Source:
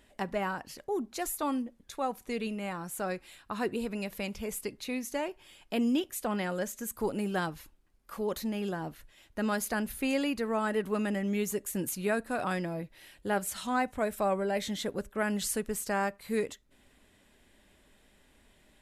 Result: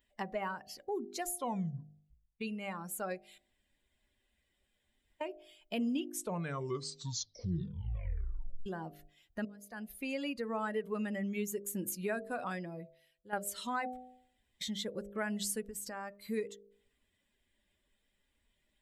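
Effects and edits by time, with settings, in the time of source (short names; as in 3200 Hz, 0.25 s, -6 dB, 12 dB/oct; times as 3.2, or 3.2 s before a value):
1.27 tape stop 1.14 s
3.38–5.21 room tone
5.9 tape stop 2.76 s
9.45–10.49 fade in
12.32–13.33 fade out, to -15 dB
13.97–14.61 room tone
15.69–16.26 compressor, threshold -35 dBFS
whole clip: per-bin expansion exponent 1.5; de-hum 50.5 Hz, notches 15; compressor 2:1, threshold -46 dBFS; gain +6 dB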